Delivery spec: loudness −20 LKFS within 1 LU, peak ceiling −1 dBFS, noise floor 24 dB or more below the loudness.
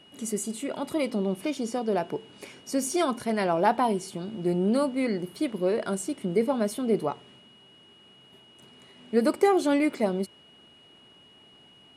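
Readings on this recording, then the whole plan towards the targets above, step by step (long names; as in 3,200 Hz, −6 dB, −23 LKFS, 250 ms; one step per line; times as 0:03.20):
interfering tone 2,900 Hz; level of the tone −54 dBFS; integrated loudness −27.5 LKFS; sample peak −9.0 dBFS; target loudness −20.0 LKFS
→ notch filter 2,900 Hz, Q 30
level +7.5 dB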